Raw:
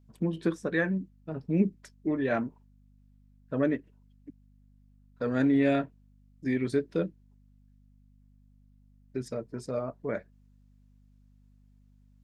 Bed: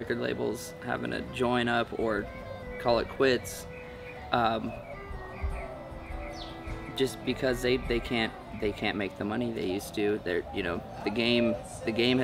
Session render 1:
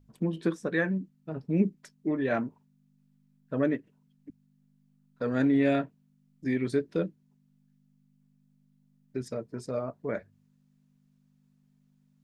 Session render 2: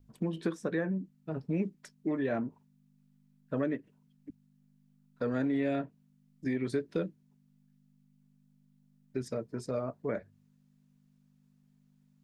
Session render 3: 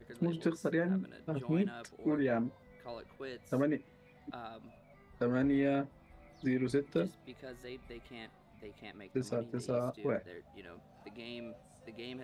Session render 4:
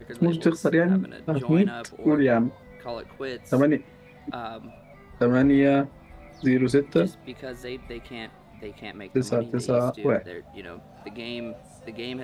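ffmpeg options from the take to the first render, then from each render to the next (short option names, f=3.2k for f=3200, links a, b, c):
-af "bandreject=f=50:t=h:w=4,bandreject=f=100:t=h:w=4"
-filter_complex "[0:a]acrossover=split=530|1100[a][b][c];[a]acompressor=threshold=-30dB:ratio=4[d];[b]acompressor=threshold=-38dB:ratio=4[e];[c]acompressor=threshold=-45dB:ratio=4[f];[d][e][f]amix=inputs=3:normalize=0"
-filter_complex "[1:a]volume=-20dB[a];[0:a][a]amix=inputs=2:normalize=0"
-af "volume=11.5dB"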